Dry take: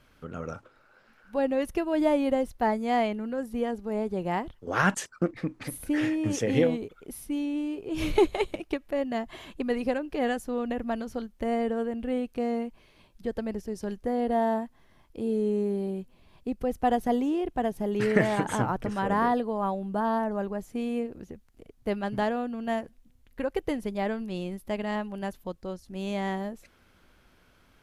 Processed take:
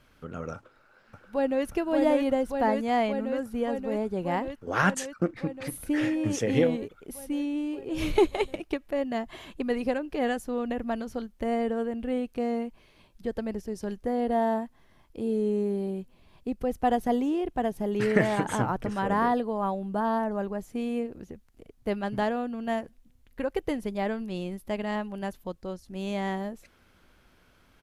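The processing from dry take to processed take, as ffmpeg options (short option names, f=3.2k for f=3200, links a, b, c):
-filter_complex "[0:a]asplit=2[a][b];[b]afade=t=in:st=0.55:d=0.01,afade=t=out:st=1.65:d=0.01,aecho=0:1:580|1160|1740|2320|2900|3480|4060|4640|5220|5800|6380|6960:0.749894|0.599915|0.479932|0.383946|0.307157|0.245725|0.19658|0.157264|0.125811|0.100649|0.0805193|0.0644154[c];[a][c]amix=inputs=2:normalize=0"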